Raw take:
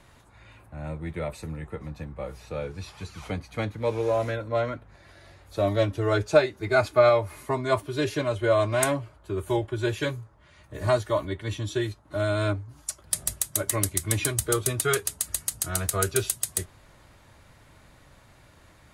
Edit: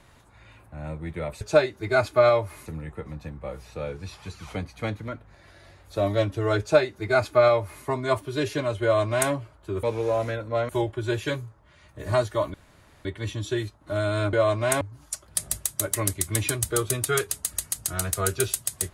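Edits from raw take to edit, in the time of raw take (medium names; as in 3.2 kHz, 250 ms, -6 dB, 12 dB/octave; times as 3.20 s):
3.83–4.69 s: move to 9.44 s
6.21–7.46 s: copy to 1.41 s
8.44–8.92 s: copy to 12.57 s
11.29 s: insert room tone 0.51 s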